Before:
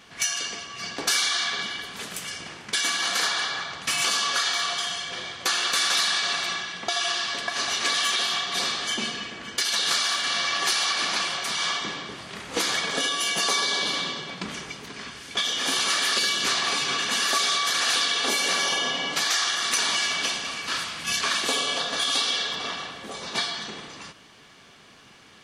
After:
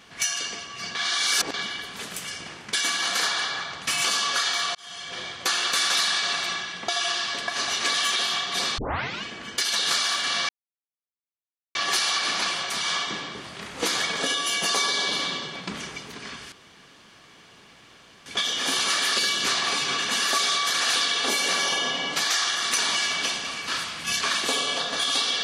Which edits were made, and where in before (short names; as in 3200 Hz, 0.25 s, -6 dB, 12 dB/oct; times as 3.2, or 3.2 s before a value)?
0.95–1.54 reverse
4.75–5.21 fade in
8.78 tape start 0.45 s
10.49 insert silence 1.26 s
15.26 insert room tone 1.74 s